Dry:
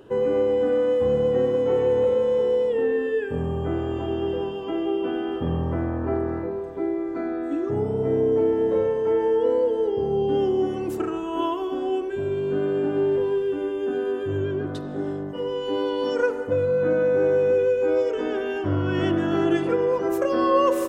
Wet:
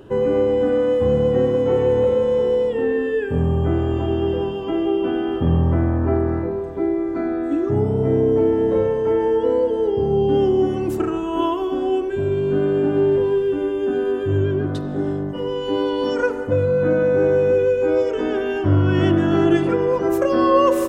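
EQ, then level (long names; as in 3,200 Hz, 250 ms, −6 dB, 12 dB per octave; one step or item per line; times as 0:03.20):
low-shelf EQ 180 Hz +8 dB
notch filter 470 Hz, Q 12
+3.5 dB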